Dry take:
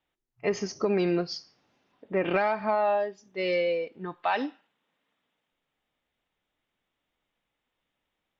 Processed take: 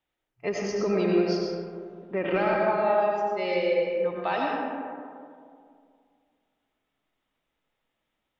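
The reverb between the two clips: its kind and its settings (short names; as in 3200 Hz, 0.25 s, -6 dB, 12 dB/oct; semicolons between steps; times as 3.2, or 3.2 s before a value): digital reverb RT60 2.3 s, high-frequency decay 0.35×, pre-delay 55 ms, DRR -2 dB; gain -2.5 dB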